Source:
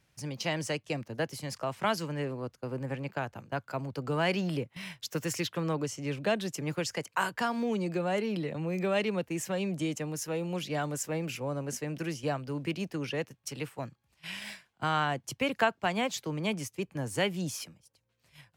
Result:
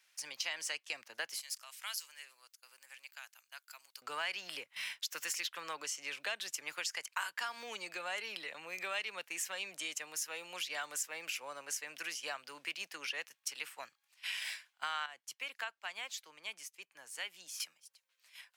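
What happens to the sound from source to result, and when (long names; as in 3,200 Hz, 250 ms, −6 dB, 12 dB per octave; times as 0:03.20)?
0:01.41–0:04.02: first difference
0:15.06–0:17.60: clip gain −10 dB
whole clip: high-pass filter 1,500 Hz 12 dB per octave; downward compressor 3 to 1, threshold −40 dBFS; level +4 dB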